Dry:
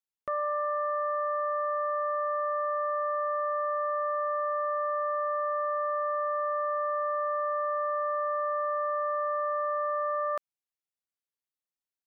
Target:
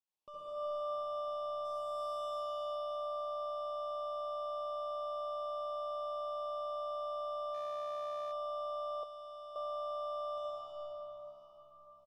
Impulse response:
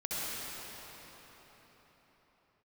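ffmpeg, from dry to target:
-filter_complex "[0:a]equalizer=f=420:t=o:w=2.3:g=-4,alimiter=level_in=10dB:limit=-24dB:level=0:latency=1,volume=-10dB,asplit=2[a][b];[b]highpass=f=720:p=1,volume=16dB,asoftclip=type=tanh:threshold=-33.5dB[c];[a][c]amix=inputs=2:normalize=0,lowpass=f=1.1k:p=1,volume=-6dB,asplit=3[d][e][f];[d]afade=t=out:st=1.64:d=0.02[g];[e]aemphasis=mode=production:type=75kf,afade=t=in:st=1.64:d=0.02,afade=t=out:st=2.18:d=0.02[h];[f]afade=t=in:st=2.18:d=0.02[i];[g][h][i]amix=inputs=3:normalize=0,asplit=7[j][k][l][m][n][o][p];[k]adelay=111,afreqshift=67,volume=-19dB[q];[l]adelay=222,afreqshift=134,volume=-22.7dB[r];[m]adelay=333,afreqshift=201,volume=-26.5dB[s];[n]adelay=444,afreqshift=268,volume=-30.2dB[t];[o]adelay=555,afreqshift=335,volume=-34dB[u];[p]adelay=666,afreqshift=402,volume=-37.7dB[v];[j][q][r][s][t][u][v]amix=inputs=7:normalize=0[w];[1:a]atrim=start_sample=2205[x];[w][x]afir=irnorm=-1:irlink=0,asettb=1/sr,asplit=3[y][z][aa];[y]atrim=end=9.034[ab];[z]atrim=start=9.03:end=9.56,asetpts=PTS-STARTPTS,afade=t=in:d=0.004:c=qsin,afade=t=out:st=0.526:d=0.004:c=qsin,acrossover=split=560|1700[ac][ad][ae];[ac]acompressor=threshold=-54dB:ratio=4[af];[ad]acompressor=threshold=-49dB:ratio=4[ag];[ae]acompressor=threshold=-54dB:ratio=4[ah];[af][ag][ah]amix=inputs=3:normalize=0[ai];[aa]atrim=start=9.556[aj];[ab][ai]acrossfade=d=0.004:c1=hsin:c2=qsin[ak];[ak][aj]acrossfade=d=0.004:c1=qsin:c2=hsin,asuperstop=centerf=1700:order=8:qfactor=1.3,asplit=3[al][am][an];[al]afade=t=out:st=7.53:d=0.02[ao];[am]volume=32.5dB,asoftclip=hard,volume=-32.5dB,afade=t=in:st=7.53:d=0.02,afade=t=out:st=8.31:d=0.02[ap];[an]afade=t=in:st=8.31:d=0.02[aq];[ao][ap][aq]amix=inputs=3:normalize=0,volume=-2dB"

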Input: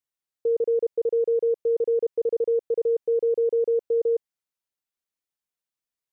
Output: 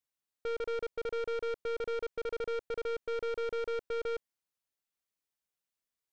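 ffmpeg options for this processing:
-af "aeval=exprs='(tanh(44.7*val(0)+0.35)-tanh(0.35))/44.7':c=same"

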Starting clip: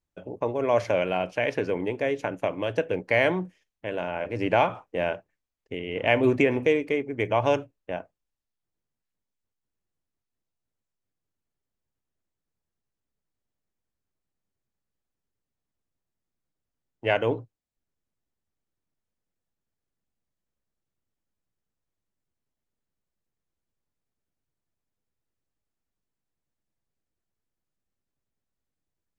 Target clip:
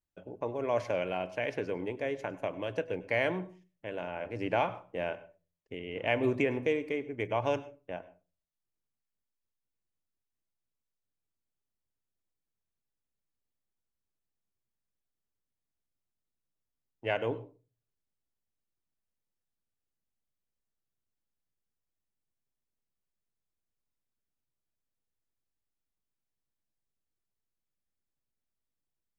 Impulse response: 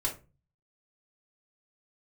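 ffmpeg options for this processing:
-filter_complex "[0:a]asplit=2[a][b];[1:a]atrim=start_sample=2205,adelay=98[c];[b][c]afir=irnorm=-1:irlink=0,volume=-22dB[d];[a][d]amix=inputs=2:normalize=0,volume=-7.5dB"

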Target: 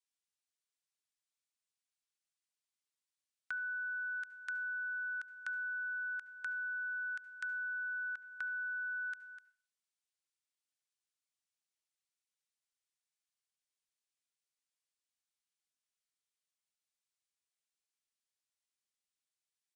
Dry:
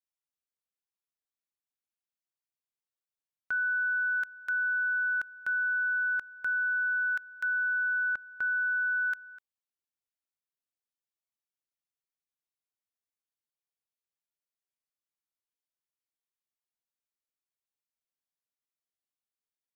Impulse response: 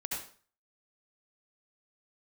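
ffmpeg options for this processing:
-filter_complex "[0:a]tiltshelf=f=970:g=-10,acrossover=split=840|1900[a][b][c];[a]acompressor=threshold=-58dB:ratio=4[d];[b]acompressor=threshold=-37dB:ratio=4[e];[c]acompressor=threshold=-45dB:ratio=4[f];[d][e][f]amix=inputs=3:normalize=0,asplit=2[g][h];[1:a]atrim=start_sample=2205[i];[h][i]afir=irnorm=-1:irlink=0,volume=-18dB[j];[g][j]amix=inputs=2:normalize=0,aresample=22050,aresample=44100,volume=-6.5dB"

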